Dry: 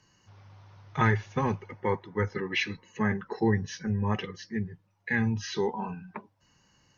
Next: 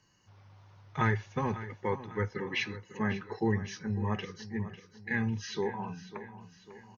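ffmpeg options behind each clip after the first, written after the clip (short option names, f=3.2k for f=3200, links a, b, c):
-af "aecho=1:1:548|1096|1644|2192|2740:0.2|0.102|0.0519|0.0265|0.0135,volume=-4dB"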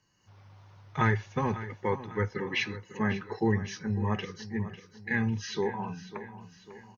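-af "dynaudnorm=f=150:g=3:m=6.5dB,volume=-4dB"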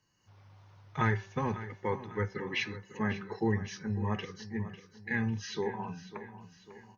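-af "bandreject=f=194.3:t=h:w=4,bandreject=f=388.6:t=h:w=4,bandreject=f=582.9:t=h:w=4,bandreject=f=777.2:t=h:w=4,bandreject=f=971.5:t=h:w=4,bandreject=f=1.1658k:t=h:w=4,bandreject=f=1.3601k:t=h:w=4,bandreject=f=1.5544k:t=h:w=4,bandreject=f=1.7487k:t=h:w=4,bandreject=f=1.943k:t=h:w=4,bandreject=f=2.1373k:t=h:w=4,volume=-3dB"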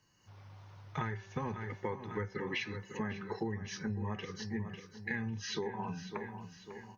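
-af "acompressor=threshold=-37dB:ratio=10,volume=3.5dB"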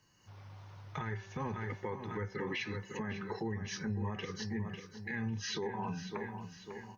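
-af "alimiter=level_in=6.5dB:limit=-24dB:level=0:latency=1:release=38,volume=-6.5dB,volume=2dB"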